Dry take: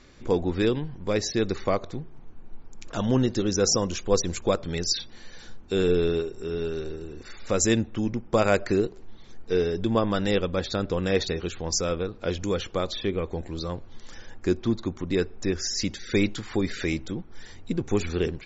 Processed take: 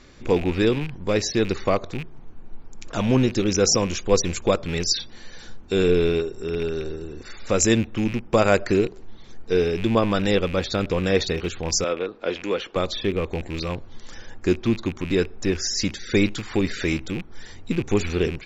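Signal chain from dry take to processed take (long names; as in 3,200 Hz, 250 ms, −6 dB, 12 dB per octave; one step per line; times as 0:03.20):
loose part that buzzes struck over −34 dBFS, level −28 dBFS
0:11.84–0:12.76: three-way crossover with the lows and the highs turned down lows −20 dB, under 240 Hz, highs −14 dB, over 4,300 Hz
level +3.5 dB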